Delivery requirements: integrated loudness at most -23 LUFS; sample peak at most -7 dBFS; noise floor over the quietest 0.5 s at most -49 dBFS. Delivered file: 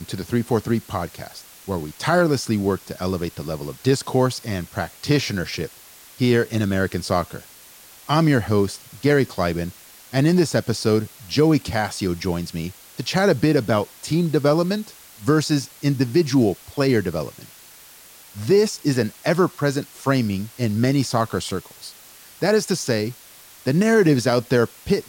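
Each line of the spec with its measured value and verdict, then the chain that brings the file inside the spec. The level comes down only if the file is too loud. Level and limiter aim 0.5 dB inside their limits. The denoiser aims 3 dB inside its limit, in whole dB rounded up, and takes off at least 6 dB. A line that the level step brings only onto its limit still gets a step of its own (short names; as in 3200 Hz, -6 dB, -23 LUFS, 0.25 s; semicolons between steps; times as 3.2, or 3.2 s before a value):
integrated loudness -21.5 LUFS: fail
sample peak -5.0 dBFS: fail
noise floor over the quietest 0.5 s -46 dBFS: fail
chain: denoiser 6 dB, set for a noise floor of -46 dBFS; gain -2 dB; limiter -7.5 dBFS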